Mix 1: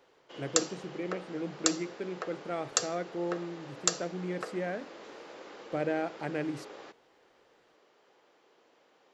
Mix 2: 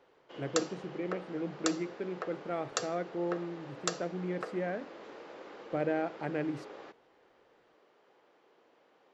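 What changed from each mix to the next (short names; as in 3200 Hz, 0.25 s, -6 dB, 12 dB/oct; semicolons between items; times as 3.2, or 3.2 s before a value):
master: add LPF 2500 Hz 6 dB/oct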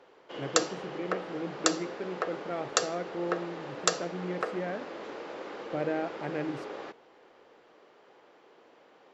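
background +7.5 dB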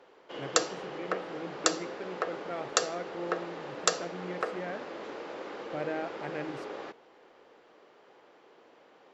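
speech: add bell 240 Hz -5.5 dB 2.8 oct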